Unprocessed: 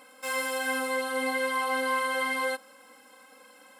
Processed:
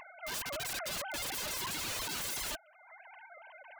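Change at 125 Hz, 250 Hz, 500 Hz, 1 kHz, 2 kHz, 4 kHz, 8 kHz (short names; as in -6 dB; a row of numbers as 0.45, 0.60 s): n/a, -14.0 dB, -14.5 dB, -13.5 dB, -12.0 dB, -1.0 dB, +1.0 dB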